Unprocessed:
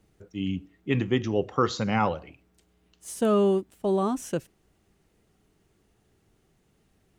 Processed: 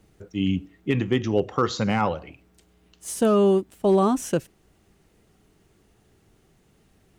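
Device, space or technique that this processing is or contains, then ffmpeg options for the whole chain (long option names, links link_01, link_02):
limiter into clipper: -af "alimiter=limit=-16dB:level=0:latency=1:release=445,asoftclip=type=hard:threshold=-17dB,volume=6dB"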